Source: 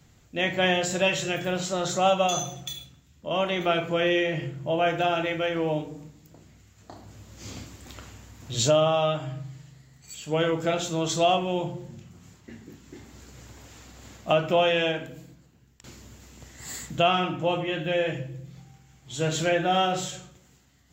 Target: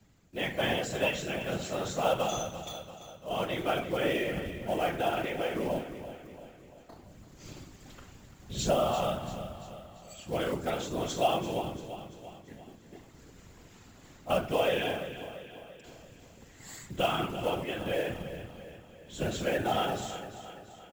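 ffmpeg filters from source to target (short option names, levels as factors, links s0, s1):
-filter_complex "[0:a]highpass=f=49:w=0.5412,highpass=f=49:w=1.3066,highshelf=f=3500:g=-4.5,acrusher=bits=5:mode=log:mix=0:aa=0.000001,afftfilt=real='hypot(re,im)*cos(2*PI*random(0))':imag='hypot(re,im)*sin(2*PI*random(1))':win_size=512:overlap=0.75,asplit=2[s0][s1];[s1]aecho=0:1:341|682|1023|1364|1705:0.251|0.131|0.0679|0.0353|0.0184[s2];[s0][s2]amix=inputs=2:normalize=0"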